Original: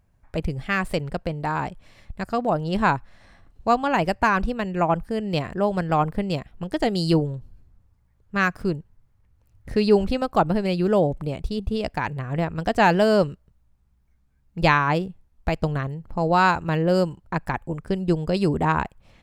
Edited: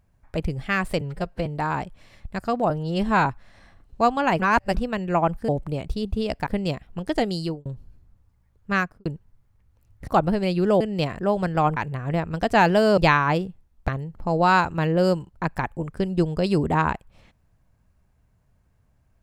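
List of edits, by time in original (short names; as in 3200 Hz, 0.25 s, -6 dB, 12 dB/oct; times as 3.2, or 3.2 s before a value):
1.01–1.31 stretch 1.5×
2.55–2.92 stretch 1.5×
4.06–4.41 reverse
5.15–6.11 swap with 11.03–12.01
6.83–7.3 fade out
8.37–8.7 studio fade out
9.72–10.3 cut
13.22–14.58 cut
15.49–15.79 cut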